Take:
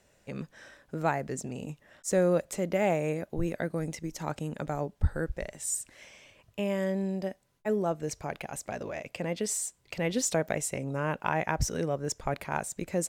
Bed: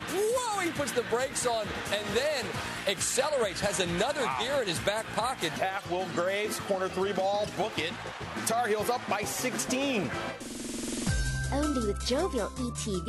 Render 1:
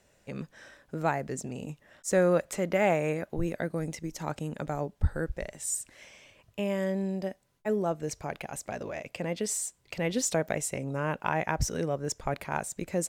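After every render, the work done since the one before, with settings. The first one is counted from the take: 2.13–3.37 bell 1500 Hz +5.5 dB 1.8 oct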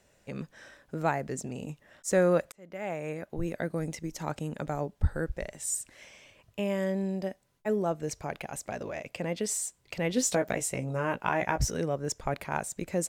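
2.52–3.69 fade in; 10.15–11.71 doubler 16 ms -6 dB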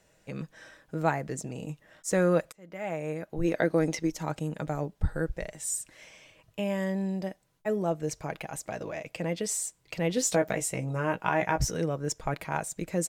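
3.44–4.11 spectral gain 250–6600 Hz +7 dB; comb 6.3 ms, depth 37%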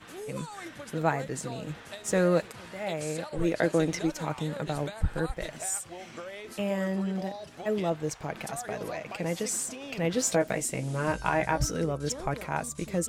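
add bed -12 dB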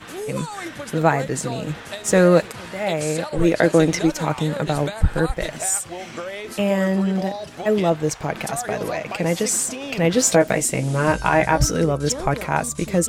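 gain +10 dB; limiter -3 dBFS, peak gain reduction 2.5 dB

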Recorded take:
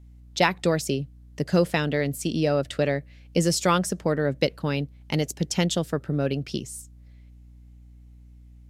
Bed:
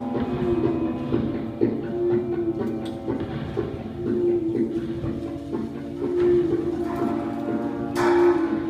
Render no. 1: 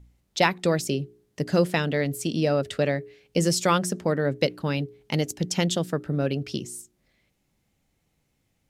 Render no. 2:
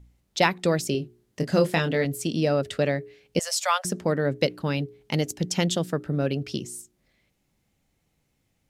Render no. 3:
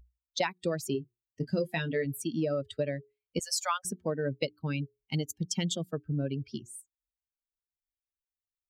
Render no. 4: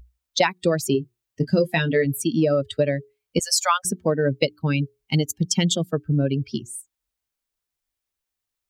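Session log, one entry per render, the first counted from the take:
de-hum 60 Hz, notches 7
0.92–2.05 doubler 25 ms -7 dB; 3.39–3.85 steep high-pass 580 Hz 72 dB/oct
per-bin expansion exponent 2; compressor 6:1, threshold -26 dBFS, peak gain reduction 9 dB
gain +10.5 dB

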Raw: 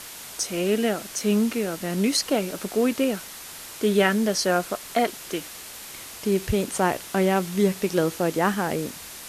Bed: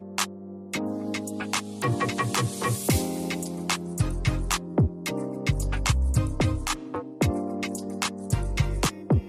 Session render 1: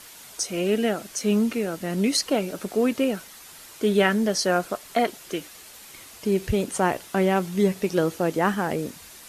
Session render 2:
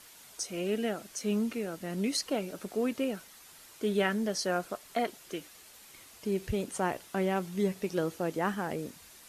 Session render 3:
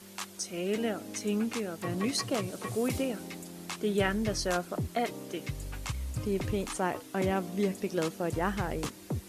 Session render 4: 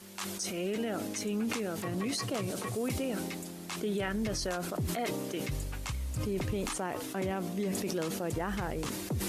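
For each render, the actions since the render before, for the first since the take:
denoiser 7 dB, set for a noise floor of -40 dBFS
gain -8.5 dB
add bed -12.5 dB
limiter -25 dBFS, peak gain reduction 11 dB; sustainer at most 25 dB/s

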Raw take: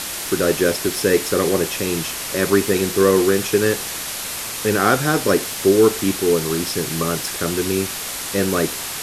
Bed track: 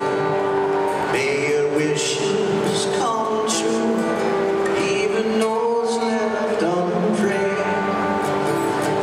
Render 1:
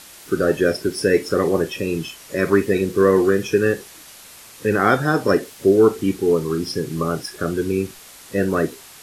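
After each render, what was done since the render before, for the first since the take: noise print and reduce 15 dB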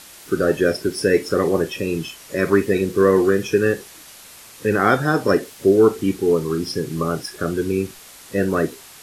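nothing audible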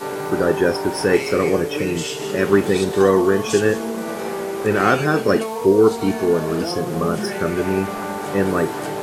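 add bed track -6 dB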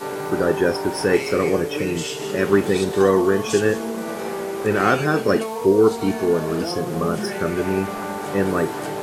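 gain -1.5 dB

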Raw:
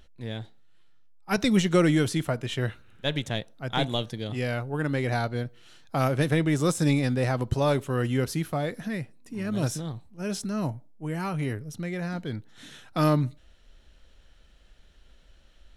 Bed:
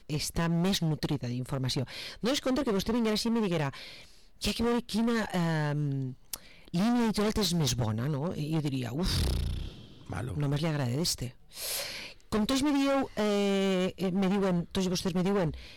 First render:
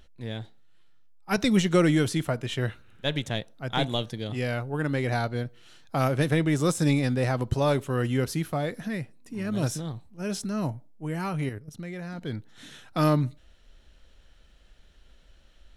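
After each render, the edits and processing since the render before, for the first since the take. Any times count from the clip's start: 11.49–12.22 level quantiser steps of 12 dB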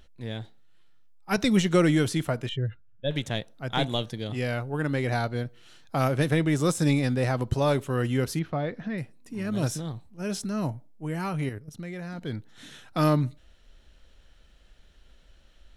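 2.49–3.11 spectral contrast raised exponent 1.9; 8.39–8.98 air absorption 220 m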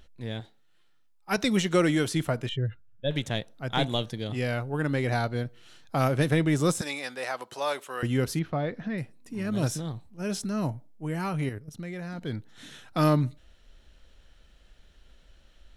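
0.4–2.15 low shelf 160 Hz -9.5 dB; 6.81–8.03 HPF 730 Hz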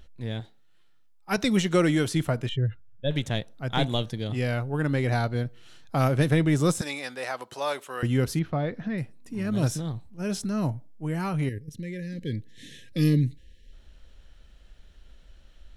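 11.49–13.73 spectral gain 570–1600 Hz -27 dB; low shelf 160 Hz +5.5 dB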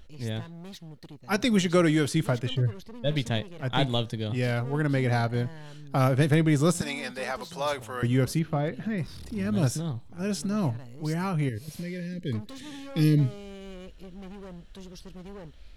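add bed -15.5 dB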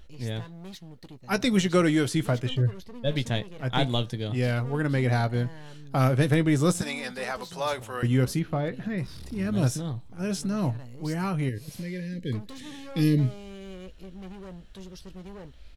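doubler 16 ms -12.5 dB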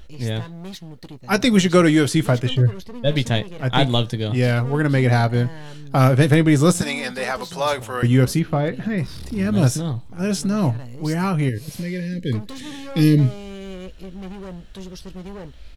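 gain +7.5 dB

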